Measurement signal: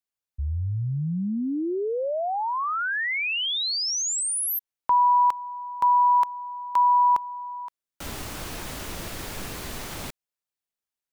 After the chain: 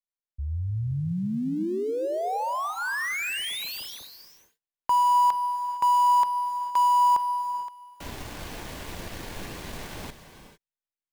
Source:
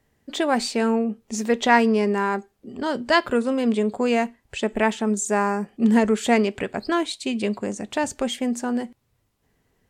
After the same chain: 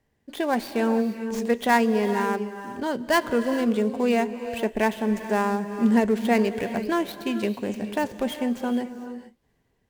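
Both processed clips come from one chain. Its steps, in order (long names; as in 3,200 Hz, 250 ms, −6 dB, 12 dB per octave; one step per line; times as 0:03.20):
gap after every zero crossing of 0.071 ms
high-shelf EQ 4,700 Hz −4.5 dB
notch filter 1,300 Hz, Q 9.9
automatic gain control gain up to 3 dB
reverb whose tail is shaped and stops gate 480 ms rising, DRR 10 dB
level −4.5 dB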